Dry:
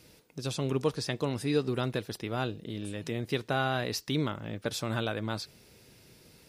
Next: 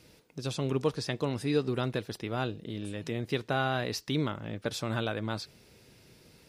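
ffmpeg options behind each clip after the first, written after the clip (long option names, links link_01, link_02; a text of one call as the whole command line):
ffmpeg -i in.wav -af "highshelf=frequency=8100:gain=-6" out.wav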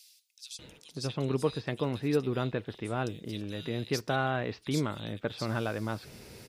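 ffmpeg -i in.wav -filter_complex "[0:a]areverse,acompressor=mode=upward:threshold=-38dB:ratio=2.5,areverse,acrossover=split=3300[link_01][link_02];[link_01]adelay=590[link_03];[link_03][link_02]amix=inputs=2:normalize=0" out.wav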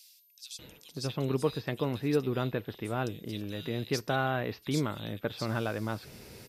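ffmpeg -i in.wav -af "aeval=exprs='val(0)+0.000794*sin(2*PI*13000*n/s)':channel_layout=same" out.wav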